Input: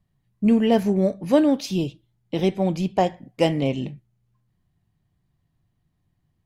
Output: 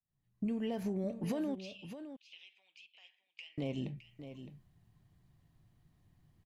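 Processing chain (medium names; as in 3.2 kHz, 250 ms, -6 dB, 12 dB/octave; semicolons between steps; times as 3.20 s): fade-in on the opening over 1.00 s; peak limiter -15.5 dBFS, peak gain reduction 10.5 dB; compression 8:1, threshold -36 dBFS, peak gain reduction 16.5 dB; 1.55–3.58 s: ladder band-pass 2.9 kHz, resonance 70%; delay 613 ms -11 dB; trim +2 dB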